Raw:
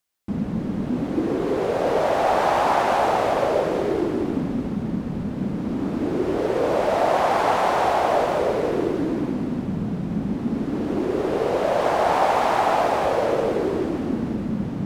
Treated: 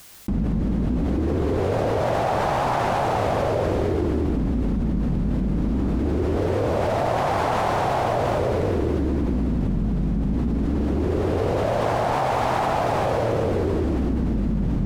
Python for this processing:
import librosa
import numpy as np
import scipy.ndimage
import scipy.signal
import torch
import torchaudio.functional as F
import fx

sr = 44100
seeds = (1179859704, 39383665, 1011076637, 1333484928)

y = fx.octave_divider(x, sr, octaves=2, level_db=-1.0)
y = fx.bass_treble(y, sr, bass_db=5, treble_db=1)
y = fx.env_flatten(y, sr, amount_pct=100)
y = y * 10.0 ** (-6.5 / 20.0)